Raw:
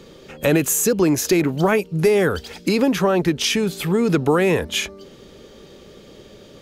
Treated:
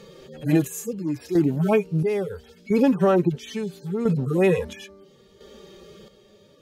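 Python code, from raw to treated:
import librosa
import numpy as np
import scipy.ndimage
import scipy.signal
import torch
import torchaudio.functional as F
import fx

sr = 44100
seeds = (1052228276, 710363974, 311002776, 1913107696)

y = fx.hpss_only(x, sr, part='harmonic')
y = fx.chopper(y, sr, hz=0.74, depth_pct=60, duty_pct=50)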